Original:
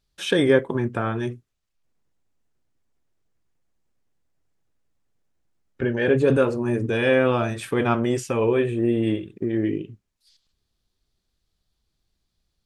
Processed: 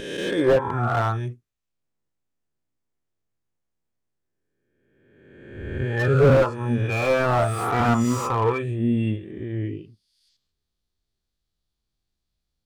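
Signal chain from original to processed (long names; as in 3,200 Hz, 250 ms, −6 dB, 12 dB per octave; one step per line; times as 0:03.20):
peak hold with a rise ahead of every peak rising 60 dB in 1.53 s
noise reduction from a noise print of the clip's start 15 dB
slew-rate limiting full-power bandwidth 57 Hz
level +5.5 dB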